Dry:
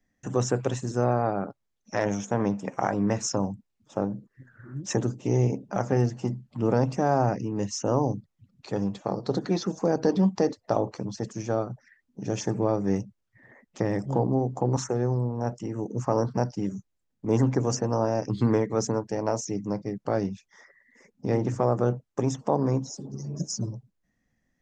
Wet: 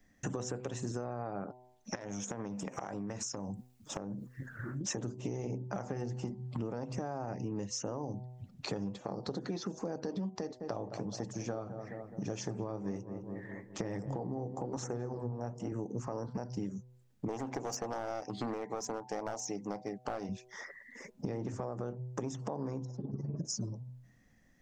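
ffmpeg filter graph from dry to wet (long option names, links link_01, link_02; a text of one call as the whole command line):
ffmpeg -i in.wav -filter_complex "[0:a]asettb=1/sr,asplit=3[link_01][link_02][link_03];[link_01]atrim=end=1.954[link_04];[link_02]atrim=start=1.95:end=4.81,asetpts=PTS-STARTPTS,afade=type=in:duration=0.004:curve=qsin,afade=type=out:start_time=2.856:duration=0.004:curve=qsin,highshelf=frequency=7000:gain=11,acompressor=threshold=-40dB:ratio=8:attack=3.2:release=140:knee=1:detection=peak[link_05];[link_03]atrim=start=4.806[link_06];[link_04][link_05]acrossfade=duration=0.004:curve1=hsin:curve2=qsin[link_07];[link_07][link_06]acrossfade=duration=0.004:curve1=qsin:curve2=hsin,asettb=1/sr,asplit=3[link_08][link_09][link_10];[link_08]atrim=end=10.394[link_11];[link_09]atrim=start=10.39:end=15.72,asetpts=PTS-STARTPTS,afade=type=in:duration=0.004:curve=qsin,afade=type=out:start_time=5.326:duration=0.004:curve=qsin,flanger=delay=0.5:depth=9.7:regen=65:speed=1.1:shape=sinusoidal,asplit=2[link_12][link_13];[link_13]adelay=210,lowpass=frequency=1400:poles=1,volume=-14.5dB,asplit=2[link_14][link_15];[link_15]adelay=210,lowpass=frequency=1400:poles=1,volume=0.53,asplit=2[link_16][link_17];[link_17]adelay=210,lowpass=frequency=1400:poles=1,volume=0.53,asplit=2[link_18][link_19];[link_19]adelay=210,lowpass=frequency=1400:poles=1,volume=0.53,asplit=2[link_20][link_21];[link_21]adelay=210,lowpass=frequency=1400:poles=1,volume=0.53[link_22];[link_12][link_14][link_16][link_18][link_20][link_22]amix=inputs=6:normalize=0,atrim=end_sample=235053[link_23];[link_10]atrim=start=15.716[link_24];[link_11][link_23]acrossfade=duration=0.004:curve1=hsin:curve2=qsin[link_25];[link_25][link_24]acrossfade=duration=0.004:curve1=qsin:curve2=hsin,asettb=1/sr,asplit=3[link_26][link_27][link_28];[link_26]atrim=end=17.284[link_29];[link_27]atrim=start=17.28:end=20.29,asetpts=PTS-STARTPTS,afade=type=in:duration=0.004:curve=qsin,afade=type=out:start_time=3.006:duration=0.004:curve=qsin,highpass=frequency=460:poles=1,equalizer=frequency=760:width=3.6:gain=9,aeval=exprs='clip(val(0),-1,0.0501)':channel_layout=same[link_30];[link_28]atrim=start=20.286[link_31];[link_29][link_30]acrossfade=duration=0.004:curve1=hsin:curve2=qsin[link_32];[link_32][link_31]acrossfade=duration=0.004:curve1=qsin:curve2=hsin,asettb=1/sr,asplit=3[link_33][link_34][link_35];[link_33]atrim=end=22.854[link_36];[link_34]atrim=start=22.85:end=23.45,asetpts=PTS-STARTPTS,afade=type=in:duration=0.004:curve=qsin,afade=type=out:start_time=0.596:duration=0.004:curve=qsin,lowpass=1900,tremolo=f=20:d=0.621[link_37];[link_35]atrim=start=23.446[link_38];[link_36][link_37]acrossfade=duration=0.004:curve1=hsin:curve2=qsin[link_39];[link_39][link_38]acrossfade=duration=0.004:curve1=qsin:curve2=hsin,bandreject=frequency=125.5:width_type=h:width=4,bandreject=frequency=251:width_type=h:width=4,bandreject=frequency=376.5:width_type=h:width=4,bandreject=frequency=502:width_type=h:width=4,bandreject=frequency=627.5:width_type=h:width=4,bandreject=frequency=753:width_type=h:width=4,bandreject=frequency=878.5:width_type=h:width=4,bandreject=frequency=1004:width_type=h:width=4,alimiter=limit=-19.5dB:level=0:latency=1:release=174,acompressor=threshold=-43dB:ratio=6,volume=7.5dB" out.wav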